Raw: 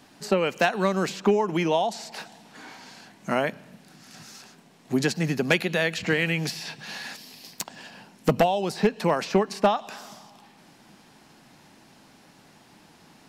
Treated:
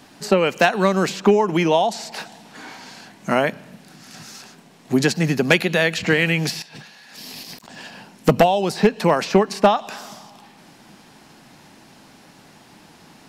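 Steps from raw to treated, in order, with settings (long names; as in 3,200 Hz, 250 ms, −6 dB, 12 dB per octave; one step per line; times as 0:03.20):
0:06.62–0:07.69: compressor whose output falls as the input rises −48 dBFS, ratio −1
level +6 dB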